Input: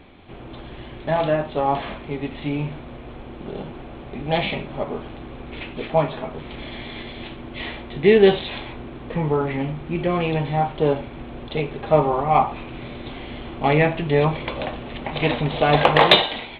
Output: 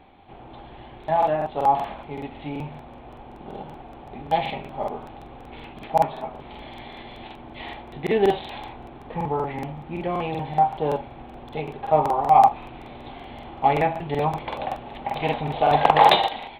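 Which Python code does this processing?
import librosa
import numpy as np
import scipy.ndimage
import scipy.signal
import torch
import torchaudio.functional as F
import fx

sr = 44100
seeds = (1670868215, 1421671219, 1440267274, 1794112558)

y = fx.peak_eq(x, sr, hz=810.0, db=12.5, octaves=0.52)
y = fx.buffer_crackle(y, sr, first_s=0.99, period_s=0.19, block=2048, kind='repeat')
y = F.gain(torch.from_numpy(y), -7.5).numpy()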